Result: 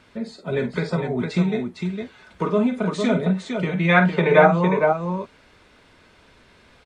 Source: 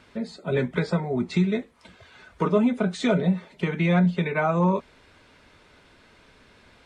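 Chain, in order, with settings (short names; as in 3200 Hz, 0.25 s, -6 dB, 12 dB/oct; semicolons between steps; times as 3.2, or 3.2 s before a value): 3.88–4.46 bell 2000 Hz -> 450 Hz +14.5 dB 2.4 oct; on a send: tapped delay 48/457 ms -9/-5 dB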